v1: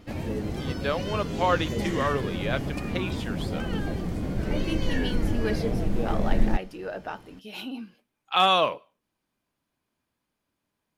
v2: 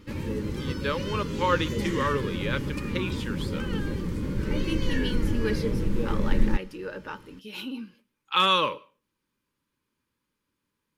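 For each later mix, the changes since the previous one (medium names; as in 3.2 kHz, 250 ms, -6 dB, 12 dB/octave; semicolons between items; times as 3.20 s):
speech: send +8.0 dB; master: add Butterworth band-stop 700 Hz, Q 2.3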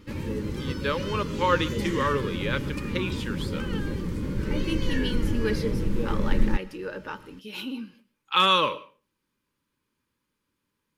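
speech: send +8.0 dB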